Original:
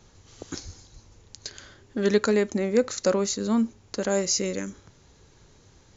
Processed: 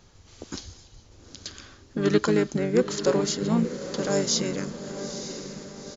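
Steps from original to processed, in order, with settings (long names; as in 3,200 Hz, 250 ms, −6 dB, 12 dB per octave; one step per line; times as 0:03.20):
feedback delay with all-pass diffusion 907 ms, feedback 52%, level −10 dB
pitch-shifted copies added −5 semitones −4 dB
level −1.5 dB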